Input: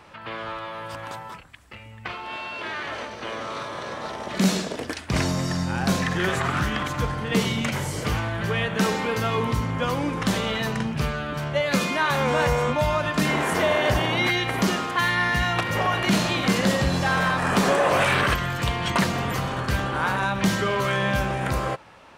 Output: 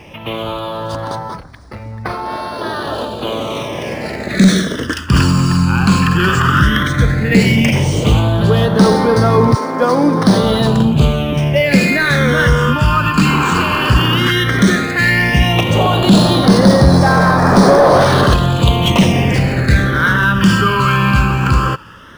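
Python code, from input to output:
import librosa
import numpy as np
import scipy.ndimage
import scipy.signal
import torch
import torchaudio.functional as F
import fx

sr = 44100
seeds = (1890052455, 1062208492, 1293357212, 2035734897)

y = fx.notch(x, sr, hz=2100.0, q=6.2, at=(2.61, 3.19))
y = fx.highpass(y, sr, hz=fx.line((9.54, 370.0), (10.42, 100.0)), slope=24, at=(9.54, 10.42), fade=0.02)
y = fx.fold_sine(y, sr, drive_db=6, ceiling_db=-7.5)
y = fx.phaser_stages(y, sr, stages=12, low_hz=620.0, high_hz=2800.0, hz=0.13, feedback_pct=25)
y = np.interp(np.arange(len(y)), np.arange(len(y))[::3], y[::3])
y = F.gain(torch.from_numpy(y), 5.0).numpy()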